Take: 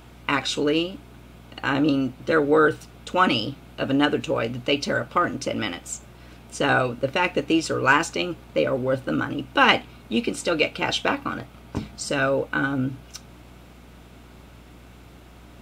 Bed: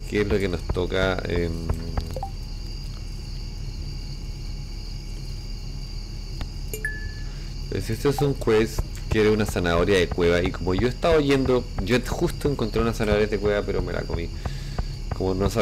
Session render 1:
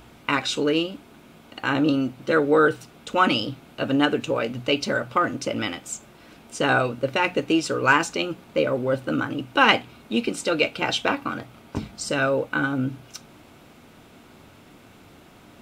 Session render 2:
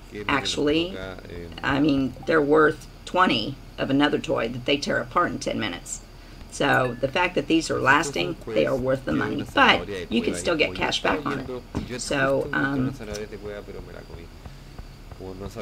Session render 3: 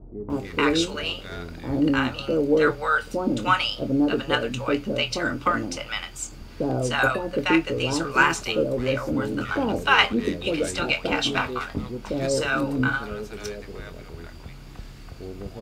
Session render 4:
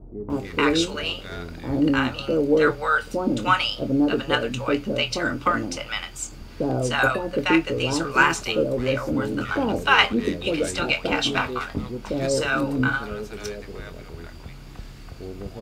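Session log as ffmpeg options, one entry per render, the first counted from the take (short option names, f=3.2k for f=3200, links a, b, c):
-af "bandreject=f=60:t=h:w=4,bandreject=f=120:t=h:w=4,bandreject=f=180:t=h:w=4"
-filter_complex "[1:a]volume=-12.5dB[a];[0:a][a]amix=inputs=2:normalize=0"
-filter_complex "[0:a]asplit=2[a][b];[b]adelay=24,volume=-11.5dB[c];[a][c]amix=inputs=2:normalize=0,acrossover=split=680[d][e];[e]adelay=300[f];[d][f]amix=inputs=2:normalize=0"
-af "volume=1dB"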